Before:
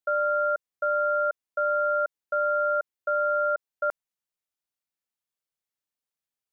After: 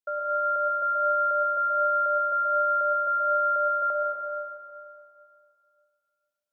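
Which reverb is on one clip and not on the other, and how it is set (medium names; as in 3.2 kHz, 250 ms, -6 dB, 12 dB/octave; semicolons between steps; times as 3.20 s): algorithmic reverb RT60 2.5 s, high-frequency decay 1×, pre-delay 80 ms, DRR -1 dB; trim -5.5 dB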